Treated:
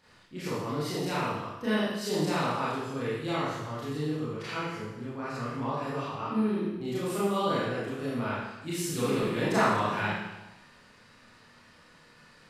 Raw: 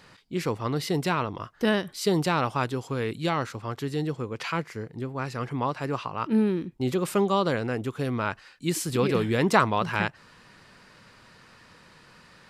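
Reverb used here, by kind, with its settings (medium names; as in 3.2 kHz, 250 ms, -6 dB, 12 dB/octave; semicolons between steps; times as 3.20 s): Schroeder reverb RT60 1 s, combs from 26 ms, DRR -9.5 dB; trim -13 dB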